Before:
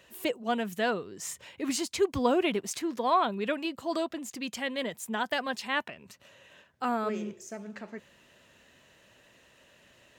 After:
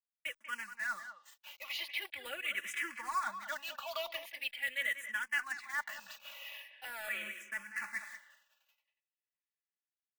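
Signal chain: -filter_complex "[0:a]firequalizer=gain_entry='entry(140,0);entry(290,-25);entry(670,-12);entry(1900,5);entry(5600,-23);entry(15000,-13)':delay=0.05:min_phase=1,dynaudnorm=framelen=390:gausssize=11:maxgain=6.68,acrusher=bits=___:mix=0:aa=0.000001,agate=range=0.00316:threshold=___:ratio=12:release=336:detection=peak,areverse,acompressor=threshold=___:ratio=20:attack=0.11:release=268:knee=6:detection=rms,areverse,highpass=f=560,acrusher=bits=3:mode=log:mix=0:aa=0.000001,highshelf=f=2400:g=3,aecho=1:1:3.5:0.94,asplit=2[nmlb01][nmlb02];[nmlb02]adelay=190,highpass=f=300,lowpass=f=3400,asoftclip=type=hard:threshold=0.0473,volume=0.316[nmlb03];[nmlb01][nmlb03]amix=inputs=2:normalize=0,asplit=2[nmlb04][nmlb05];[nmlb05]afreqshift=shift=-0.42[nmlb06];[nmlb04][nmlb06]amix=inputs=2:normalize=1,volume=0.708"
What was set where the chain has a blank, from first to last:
8, 0.00708, 0.0447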